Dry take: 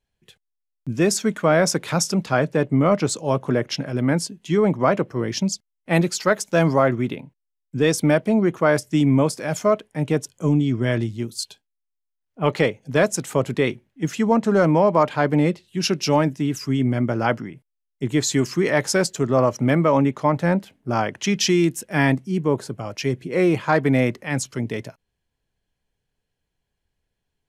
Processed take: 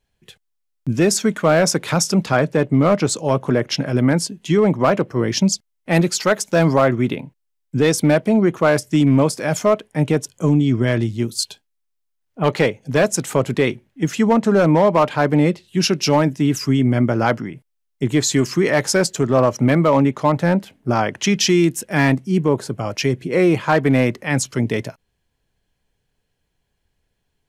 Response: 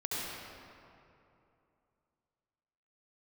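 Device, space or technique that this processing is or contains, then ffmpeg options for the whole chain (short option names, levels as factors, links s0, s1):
clipper into limiter: -af "asoftclip=type=hard:threshold=0.299,alimiter=limit=0.2:level=0:latency=1:release=316,volume=2.11"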